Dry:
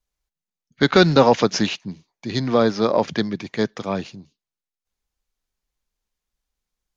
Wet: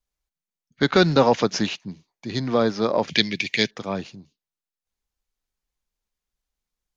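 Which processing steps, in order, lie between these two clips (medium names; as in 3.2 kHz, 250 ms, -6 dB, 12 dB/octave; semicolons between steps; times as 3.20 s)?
3.10–3.71 s: resonant high shelf 1.7 kHz +11.5 dB, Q 3; trim -3 dB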